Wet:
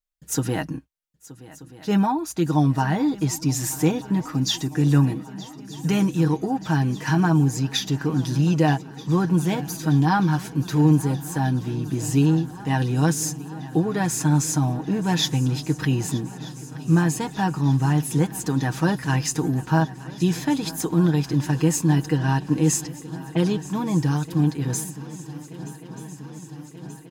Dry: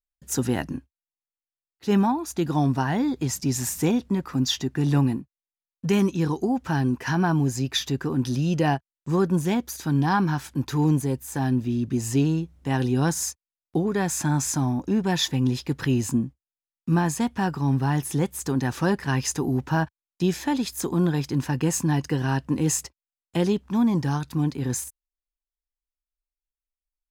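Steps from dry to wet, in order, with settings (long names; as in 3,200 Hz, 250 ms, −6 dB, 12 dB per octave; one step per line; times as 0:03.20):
0:22.16–0:23.57: low-pass that shuts in the quiet parts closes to 840 Hz, open at −20.5 dBFS
comb filter 6.4 ms
feedback echo with a long and a short gap by turns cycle 1,232 ms, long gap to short 3 to 1, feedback 73%, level −19 dB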